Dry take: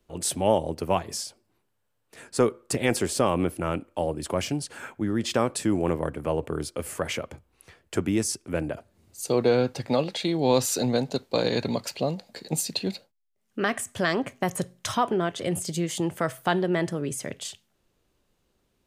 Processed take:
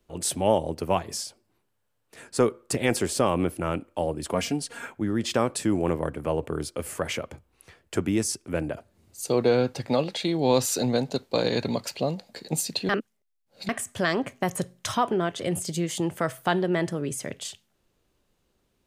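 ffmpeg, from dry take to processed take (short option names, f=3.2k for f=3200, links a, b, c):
-filter_complex "[0:a]asettb=1/sr,asplit=3[a][b][c];[a]atrim=end=4.334[d];[b]atrim=start=4.33:end=4.87,asetpts=PTS-STARTPTS,afade=t=in:d=0.004:c=qsin,afade=t=out:st=0.536:d=0.004:c=qsin,aecho=1:1:4.3:0.65,atrim=end_sample=23814[e];[c]atrim=start=4.866[f];[d][e]acrossfade=d=0.004:c1=hsin:c2=qsin[g];[g][f]acrossfade=d=0.004:c1=qsin:c2=hsin,asplit=3[h][i][j];[h]atrim=end=12.892[k];[i]atrim=start=12.888:end=13.692,asetpts=PTS-STARTPTS,areverse[l];[j]atrim=start=13.688[m];[k][l]acrossfade=d=0.004:c1=hsin:c2=hsin[n];[n][m]acrossfade=d=0.004:c1=hsin:c2=hsin"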